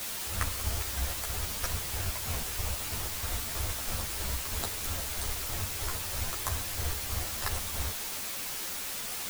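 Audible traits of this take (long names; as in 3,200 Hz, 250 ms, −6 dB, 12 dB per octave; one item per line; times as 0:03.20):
chopped level 3.1 Hz, depth 65%, duty 50%
a quantiser's noise floor 6 bits, dither triangular
a shimmering, thickened sound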